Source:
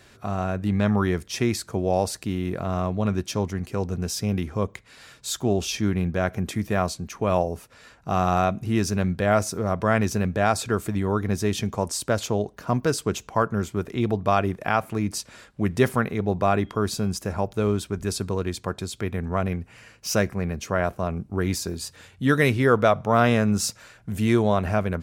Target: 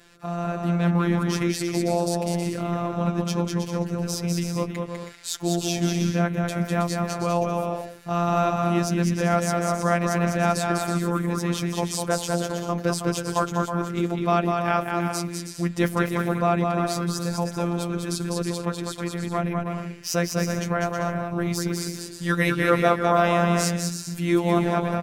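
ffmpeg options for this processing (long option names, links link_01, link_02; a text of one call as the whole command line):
ffmpeg -i in.wav -af "aecho=1:1:200|320|392|435.2|461.1:0.631|0.398|0.251|0.158|0.1,afftfilt=real='hypot(re,im)*cos(PI*b)':imag='0':win_size=1024:overlap=0.75,volume=2dB" out.wav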